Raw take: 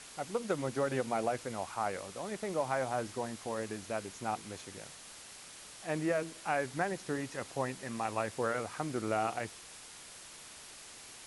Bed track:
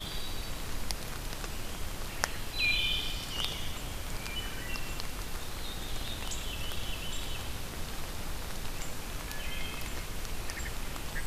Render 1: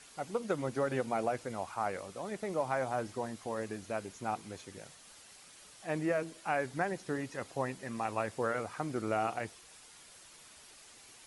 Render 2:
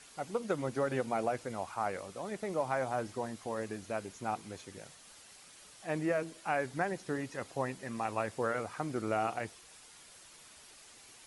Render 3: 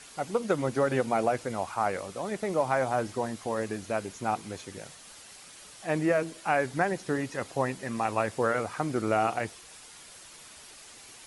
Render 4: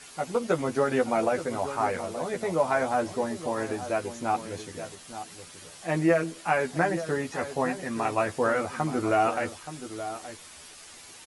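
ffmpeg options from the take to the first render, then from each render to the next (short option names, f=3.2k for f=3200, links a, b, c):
-af "afftdn=nr=7:nf=-51"
-af anull
-af "volume=6.5dB"
-filter_complex "[0:a]asplit=2[a][b];[b]adelay=12,volume=-3dB[c];[a][c]amix=inputs=2:normalize=0,asplit=2[d][e];[e]adelay=874.6,volume=-11dB,highshelf=f=4k:g=-19.7[f];[d][f]amix=inputs=2:normalize=0"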